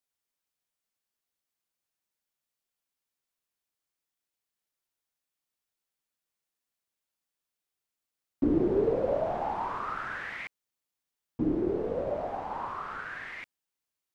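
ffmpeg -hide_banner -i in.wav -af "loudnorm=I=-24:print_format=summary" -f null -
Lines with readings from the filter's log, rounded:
Input Integrated:    -31.9 LUFS
Input True Peak:     -14.8 dBTP
Input LRA:             3.5 LU
Input Threshold:     -42.3 LUFS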